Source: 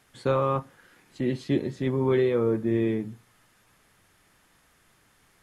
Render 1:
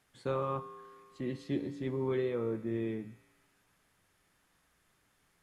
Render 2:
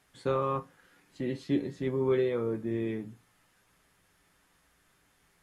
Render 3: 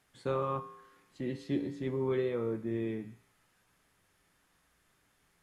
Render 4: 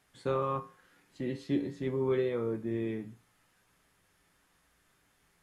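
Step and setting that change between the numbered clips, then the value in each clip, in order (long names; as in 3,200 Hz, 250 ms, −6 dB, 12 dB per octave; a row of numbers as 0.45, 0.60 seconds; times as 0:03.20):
tuned comb filter, decay: 1.9, 0.17, 0.91, 0.4 seconds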